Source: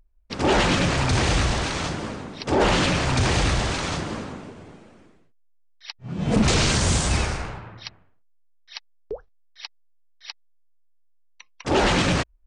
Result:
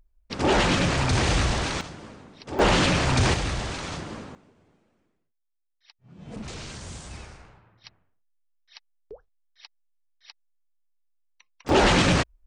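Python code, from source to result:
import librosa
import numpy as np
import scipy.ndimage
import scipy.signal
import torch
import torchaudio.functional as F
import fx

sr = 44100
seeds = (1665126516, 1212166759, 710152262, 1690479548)

y = fx.gain(x, sr, db=fx.steps((0.0, -1.5), (1.81, -12.0), (2.59, 0.0), (3.34, -6.5), (4.35, -18.5), (7.84, -11.0), (11.69, 1.0)))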